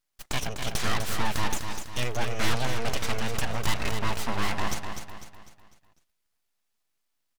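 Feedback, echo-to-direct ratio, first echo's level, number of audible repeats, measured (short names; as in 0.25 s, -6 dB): 43%, -6.0 dB, -7.0 dB, 4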